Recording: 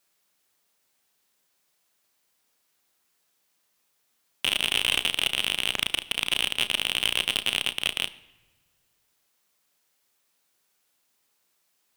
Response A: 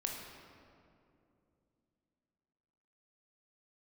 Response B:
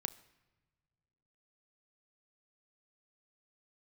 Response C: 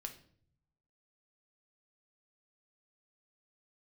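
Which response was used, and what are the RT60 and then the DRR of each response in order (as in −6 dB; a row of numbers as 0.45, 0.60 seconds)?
B; 2.6 s, non-exponential decay, 0.60 s; 0.0, 10.0, 4.0 decibels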